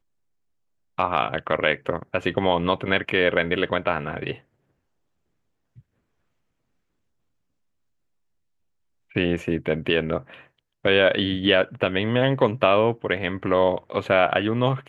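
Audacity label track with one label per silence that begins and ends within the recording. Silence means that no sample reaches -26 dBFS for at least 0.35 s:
4.320000	9.160000	silence
10.180000	10.850000	silence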